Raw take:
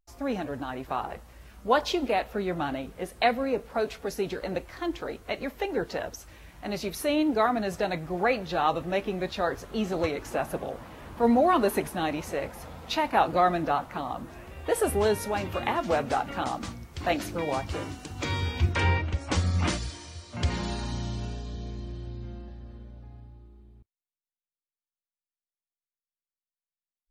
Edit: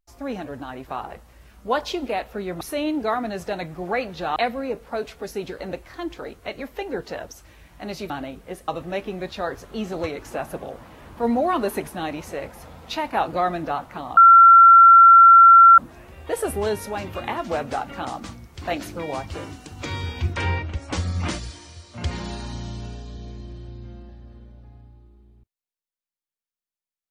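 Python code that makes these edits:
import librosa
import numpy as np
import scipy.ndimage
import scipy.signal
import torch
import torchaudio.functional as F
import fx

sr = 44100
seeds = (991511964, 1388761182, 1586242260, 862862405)

y = fx.edit(x, sr, fx.swap(start_s=2.61, length_s=0.58, other_s=6.93, other_length_s=1.75),
    fx.insert_tone(at_s=14.17, length_s=1.61, hz=1360.0, db=-6.0), tone=tone)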